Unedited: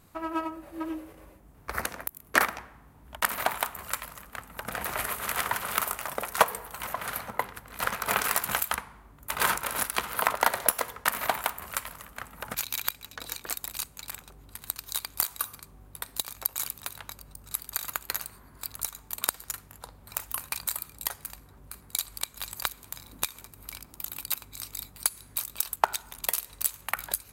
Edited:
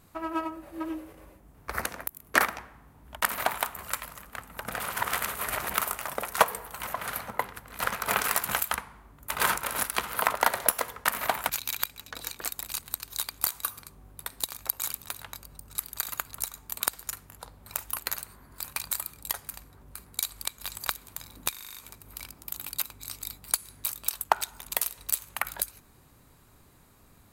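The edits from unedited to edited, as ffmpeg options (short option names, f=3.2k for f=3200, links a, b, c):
-filter_complex "[0:a]asplit=14[a][b][c][d][e][f][g][h][i][j][k][l][m][n];[a]atrim=end=4.802[o];[b]atrim=start=4.798:end=5.742,asetpts=PTS-STARTPTS,areverse[p];[c]atrim=start=5.738:end=11.472[q];[d]atrim=start=12.518:end=13.872[r];[e]atrim=start=14.578:end=18.022[s];[f]atrim=start=18.668:end=20.402[t];[g]atrim=start=18.018:end=18.672[u];[h]atrim=start=20.398:end=23.312[v];[i]atrim=start=23.268:end=23.312[w];[j]atrim=start=23.268:end=23.312[x];[k]atrim=start=23.268:end=23.312[y];[l]atrim=start=23.268:end=23.312[z];[m]atrim=start=23.268:end=23.312[aa];[n]atrim=start=23.268[ab];[o][p]acrossfade=d=0.004:c1=hsin:c2=hsin[ac];[ac][q]acrossfade=d=0.004:c1=hsin:c2=hsin[ad];[ad][r]acrossfade=d=0.004:c1=hsin:c2=hsin[ae];[ae][s]acrossfade=d=0.004:c1=hsin:c2=hsin[af];[af][t]acrossfade=d=0.004:c1=hsin:c2=hsin[ag];[ag][u]acrossfade=d=0.004:c1=hsin:c2=hsin[ah];[ah][v]acrossfade=d=0.004:c1=hsin:c2=hsin[ai];[ai][w]acrossfade=d=0.004:c1=hsin:c2=hsin[aj];[aj][x]acrossfade=d=0.004:c1=hsin:c2=hsin[ak];[ak][y]acrossfade=d=0.004:c1=hsin:c2=hsin[al];[al][z]acrossfade=d=0.004:c1=hsin:c2=hsin[am];[am][aa]acrossfade=d=0.004:c1=hsin:c2=hsin[an];[an][ab]acrossfade=d=0.004:c1=hsin:c2=hsin"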